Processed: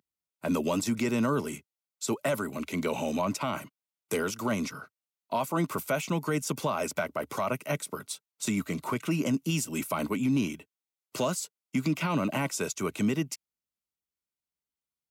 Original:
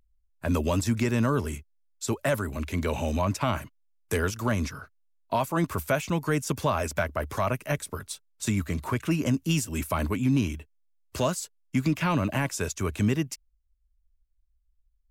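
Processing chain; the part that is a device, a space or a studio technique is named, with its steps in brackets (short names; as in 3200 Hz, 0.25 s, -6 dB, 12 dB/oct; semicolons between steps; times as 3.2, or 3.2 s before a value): PA system with an anti-feedback notch (HPF 150 Hz 24 dB/oct; Butterworth band-stop 1700 Hz, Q 6.9; limiter -19 dBFS, peak gain reduction 5.5 dB)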